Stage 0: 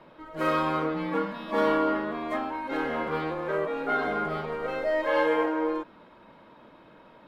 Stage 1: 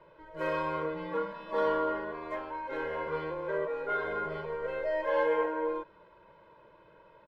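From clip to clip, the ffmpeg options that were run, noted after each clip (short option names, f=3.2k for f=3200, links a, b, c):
-af "lowpass=f=3.1k:p=1,aecho=1:1:2:0.9,volume=-7.5dB"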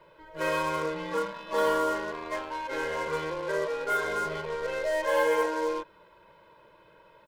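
-filter_complex "[0:a]asplit=2[a][b];[b]acrusher=bits=5:mix=0:aa=0.5,volume=-11dB[c];[a][c]amix=inputs=2:normalize=0,highshelf=f=2.8k:g=11.5"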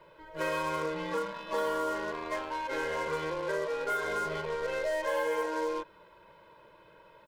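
-af "acompressor=threshold=-29dB:ratio=3"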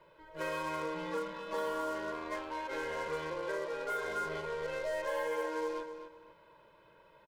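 -filter_complex "[0:a]asplit=2[a][b];[b]adelay=252,lowpass=f=5k:p=1,volume=-9dB,asplit=2[c][d];[d]adelay=252,lowpass=f=5k:p=1,volume=0.26,asplit=2[e][f];[f]adelay=252,lowpass=f=5k:p=1,volume=0.26[g];[a][c][e][g]amix=inputs=4:normalize=0,volume=-5dB"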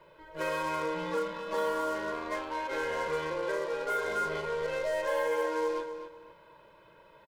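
-filter_complex "[0:a]asplit=2[a][b];[b]adelay=34,volume=-12dB[c];[a][c]amix=inputs=2:normalize=0,volume=4dB"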